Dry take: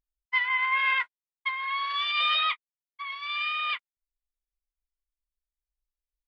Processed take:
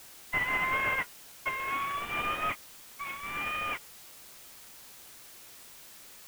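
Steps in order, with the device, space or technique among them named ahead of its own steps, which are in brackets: army field radio (band-pass 370–3300 Hz; CVSD coder 16 kbps; white noise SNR 15 dB); trim -2 dB

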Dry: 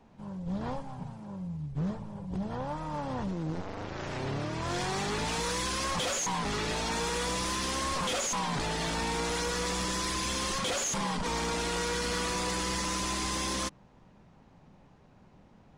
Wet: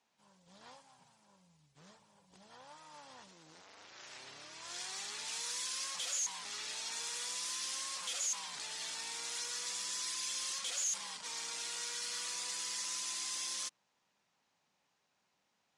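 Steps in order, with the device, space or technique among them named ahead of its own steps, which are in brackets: piezo pickup straight into a mixer (low-pass 8.5 kHz 12 dB/octave; differentiator)

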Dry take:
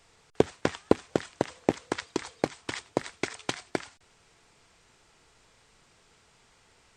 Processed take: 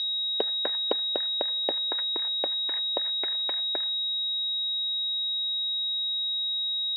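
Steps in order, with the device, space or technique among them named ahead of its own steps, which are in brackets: toy sound module (decimation joined by straight lines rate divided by 4×; class-D stage that switches slowly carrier 3.8 kHz; cabinet simulation 550–4700 Hz, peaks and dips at 580 Hz +5 dB, 1.2 kHz -4 dB, 1.8 kHz +5 dB, 3.2 kHz +4 dB); trim -3 dB

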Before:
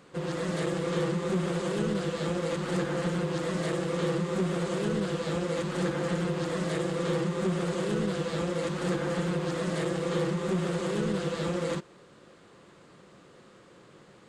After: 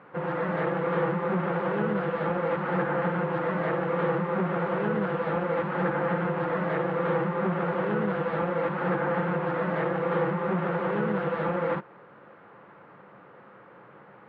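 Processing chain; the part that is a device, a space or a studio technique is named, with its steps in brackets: bass cabinet (cabinet simulation 90–2200 Hz, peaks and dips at 95 Hz -8 dB, 160 Hz -5 dB, 250 Hz -5 dB, 360 Hz -6 dB, 860 Hz +7 dB, 1.4 kHz +4 dB); trim +4.5 dB

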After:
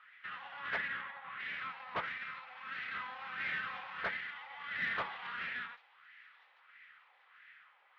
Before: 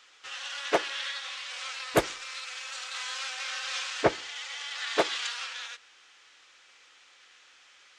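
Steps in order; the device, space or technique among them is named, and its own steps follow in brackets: 0.76–1.40 s: low-pass 2.4 kHz 12 dB/octave; wah-wah guitar rig (wah-wah 1.5 Hz 790–1900 Hz, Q 3.3; valve stage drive 38 dB, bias 0.5; cabinet simulation 78–3500 Hz, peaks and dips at 180 Hz +9 dB, 300 Hz -5 dB, 2 kHz +5 dB); feedback echo behind a high-pass 791 ms, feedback 51%, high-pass 3 kHz, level -20 dB; trim +5.5 dB

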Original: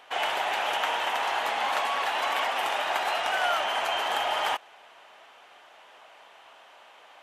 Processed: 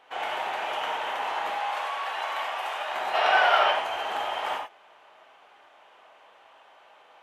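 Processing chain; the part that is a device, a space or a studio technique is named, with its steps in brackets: 1.50–2.94 s: Bessel high-pass 590 Hz, order 2; 3.14–3.71 s: time-frequency box 360–5800 Hz +9 dB; behind a face mask (treble shelf 3 kHz -8 dB); gated-style reverb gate 130 ms flat, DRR -0.5 dB; trim -4.5 dB

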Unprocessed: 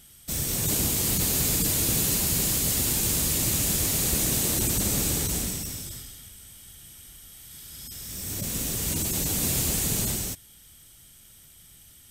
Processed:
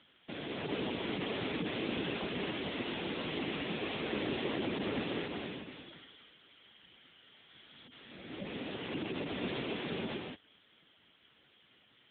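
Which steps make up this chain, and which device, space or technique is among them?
5.22–6.83 s: high-pass 130 Hz 6 dB/octave; telephone (band-pass 290–3600 Hz; trim +2.5 dB; AMR-NB 6.7 kbps 8 kHz)

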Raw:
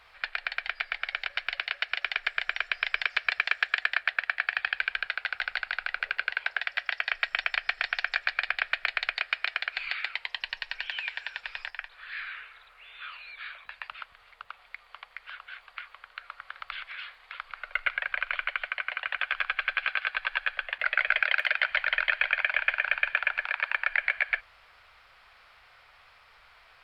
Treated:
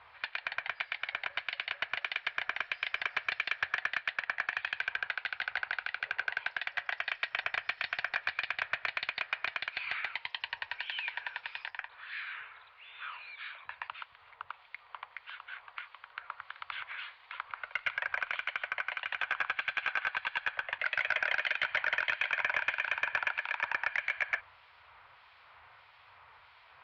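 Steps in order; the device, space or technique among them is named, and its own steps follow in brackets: guitar amplifier with harmonic tremolo (harmonic tremolo 1.6 Hz, depth 50%, crossover 2.3 kHz; saturation -21 dBFS, distortion -11 dB; cabinet simulation 77–4100 Hz, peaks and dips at 87 Hz +8 dB, 130 Hz +6 dB, 190 Hz -5 dB, 960 Hz +8 dB)

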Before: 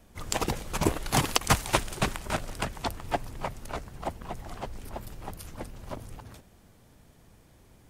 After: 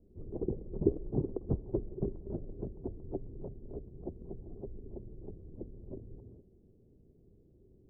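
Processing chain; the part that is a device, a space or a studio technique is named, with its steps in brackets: under water (low-pass 440 Hz 24 dB/octave; peaking EQ 390 Hz +10 dB 0.46 oct); trim -5.5 dB

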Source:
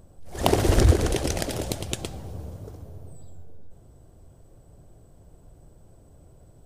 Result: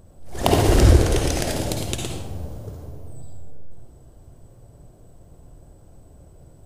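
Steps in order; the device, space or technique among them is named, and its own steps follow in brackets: bathroom (reverberation RT60 0.70 s, pre-delay 49 ms, DRR 1.5 dB); trim +1.5 dB

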